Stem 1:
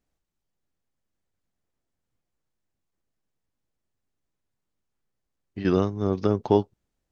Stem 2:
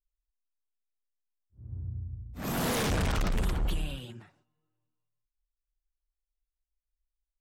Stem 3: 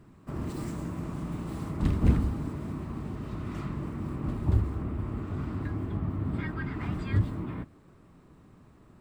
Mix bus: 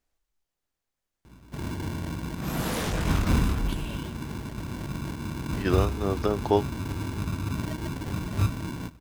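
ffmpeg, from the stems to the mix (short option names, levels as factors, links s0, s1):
-filter_complex "[0:a]equalizer=f=160:t=o:w=2.5:g=-9.5,volume=1.26[s0];[1:a]flanger=delay=19:depth=2.8:speed=1.3,volume=1.26[s1];[2:a]asoftclip=type=hard:threshold=0.126,aeval=exprs='val(0)+0.00251*(sin(2*PI*60*n/s)+sin(2*PI*2*60*n/s)/2+sin(2*PI*3*60*n/s)/3+sin(2*PI*4*60*n/s)/4+sin(2*PI*5*60*n/s)/5)':c=same,acrusher=samples=35:mix=1:aa=0.000001,adelay=1250,volume=1.12[s2];[s0][s1][s2]amix=inputs=3:normalize=0"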